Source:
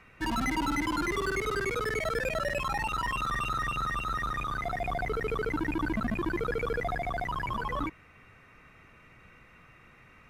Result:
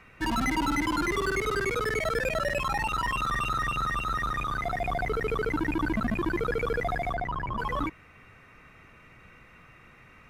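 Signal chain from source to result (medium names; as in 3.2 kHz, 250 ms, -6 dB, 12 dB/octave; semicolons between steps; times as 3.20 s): 7.13–7.57 s: low-pass 2.2 kHz -> 1 kHz 6 dB/octave; trim +2.5 dB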